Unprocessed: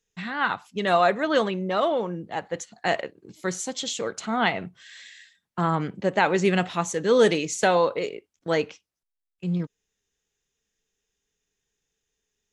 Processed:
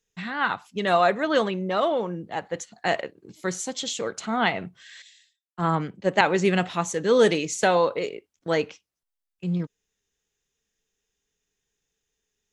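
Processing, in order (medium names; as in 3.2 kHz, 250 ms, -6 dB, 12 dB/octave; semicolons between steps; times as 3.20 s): 5.02–6.21 s: three bands expanded up and down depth 100%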